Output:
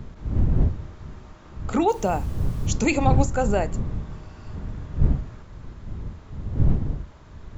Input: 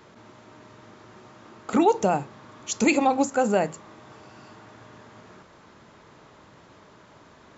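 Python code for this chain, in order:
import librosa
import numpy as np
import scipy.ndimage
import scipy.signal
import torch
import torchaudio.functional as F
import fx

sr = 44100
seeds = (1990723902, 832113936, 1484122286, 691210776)

y = fx.dmg_wind(x, sr, seeds[0], corner_hz=95.0, level_db=-23.0)
y = fx.quant_dither(y, sr, seeds[1], bits=8, dither='none', at=(1.89, 2.67))
y = F.gain(torch.from_numpy(y), -1.5).numpy()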